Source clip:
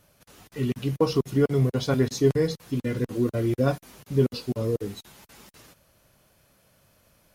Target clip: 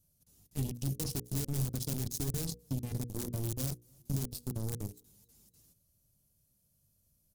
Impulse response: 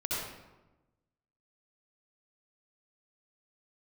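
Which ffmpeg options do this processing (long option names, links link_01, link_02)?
-filter_complex "[0:a]asplit=2[link_01][link_02];[link_02]aeval=exprs='(mod(7.08*val(0)+1,2)-1)/7.08':channel_layout=same,volume=-5dB[link_03];[link_01][link_03]amix=inputs=2:normalize=0,aecho=1:1:276|552|828:0.0631|0.0265|0.0111,alimiter=limit=-18dB:level=0:latency=1:release=13,aeval=exprs='0.126*(cos(1*acos(clip(val(0)/0.126,-1,1)))-cos(1*PI/2))+0.0447*(cos(3*acos(clip(val(0)/0.126,-1,1)))-cos(3*PI/2))':channel_layout=same,equalizer=frequency=1600:width=0.44:gain=-13,acompressor=threshold=-40dB:ratio=6,asoftclip=type=hard:threshold=-33dB,bass=frequency=250:gain=11,treble=frequency=4000:gain=13,atempo=1,bandreject=frequency=60:width_type=h:width=6,bandreject=frequency=120:width_type=h:width=6,bandreject=frequency=180:width_type=h:width=6,bandreject=frequency=240:width_type=h:width=6,bandreject=frequency=300:width_type=h:width=6,bandreject=frequency=360:width_type=h:width=6,bandreject=frequency=420:width_type=h:width=6,bandreject=frequency=480:width_type=h:width=6,bandreject=frequency=540:width_type=h:width=6,volume=1dB"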